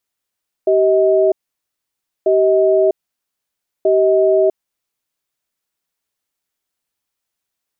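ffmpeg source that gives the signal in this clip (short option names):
-f lavfi -i "aevalsrc='0.237*(sin(2*PI*386*t)+sin(2*PI*634*t))*clip(min(mod(t,1.59),0.65-mod(t,1.59))/0.005,0,1)':d=3.99:s=44100"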